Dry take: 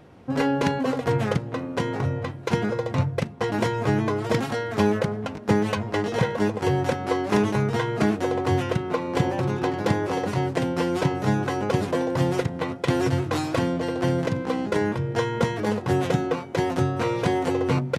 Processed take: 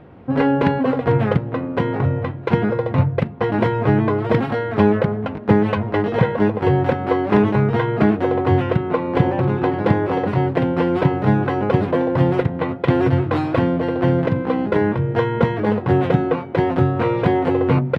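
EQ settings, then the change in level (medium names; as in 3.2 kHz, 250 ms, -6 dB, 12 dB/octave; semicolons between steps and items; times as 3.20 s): distance through air 470 m; treble shelf 6.1 kHz +8 dB; +7.0 dB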